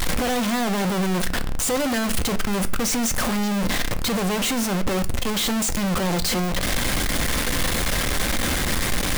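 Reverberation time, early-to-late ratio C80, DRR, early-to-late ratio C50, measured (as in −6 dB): 0.45 s, 22.5 dB, 9.5 dB, 17.5 dB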